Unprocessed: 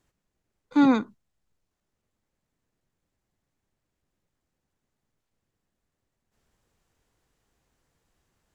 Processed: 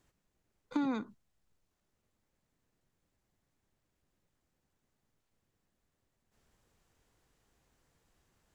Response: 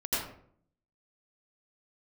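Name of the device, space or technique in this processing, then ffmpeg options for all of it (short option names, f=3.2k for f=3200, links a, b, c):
serial compression, leveller first: -af "acompressor=threshold=-26dB:ratio=1.5,acompressor=threshold=-31dB:ratio=4"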